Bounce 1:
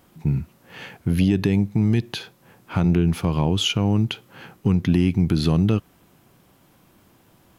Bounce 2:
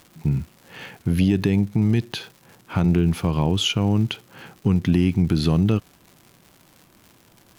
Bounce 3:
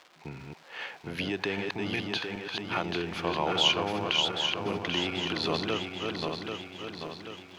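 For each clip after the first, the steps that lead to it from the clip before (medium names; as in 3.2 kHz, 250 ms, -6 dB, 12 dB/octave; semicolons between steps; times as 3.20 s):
crackle 210 per s -37 dBFS
backward echo that repeats 393 ms, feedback 71%, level -3 dB; three-band isolator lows -24 dB, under 440 Hz, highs -20 dB, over 5.6 kHz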